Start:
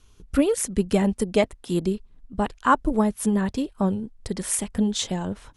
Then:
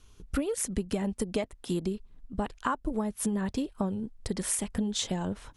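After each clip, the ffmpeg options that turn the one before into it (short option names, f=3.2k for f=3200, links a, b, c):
-af "acompressor=threshold=-25dB:ratio=12,volume=-1dB"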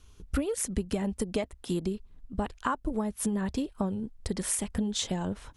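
-af "equalizer=f=65:w=3.1:g=7"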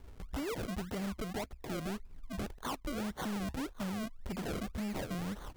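-filter_complex "[0:a]asplit=2[a][b];[b]acompressor=threshold=-38dB:ratio=6,volume=-2dB[c];[a][c]amix=inputs=2:normalize=0,acrusher=samples=34:mix=1:aa=0.000001:lfo=1:lforange=34:lforate=1.8,asoftclip=type=tanh:threshold=-33dB,volume=-1.5dB"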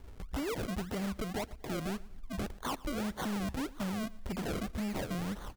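-af "aecho=1:1:117|234|351:0.0841|0.0311|0.0115,volume=2dB"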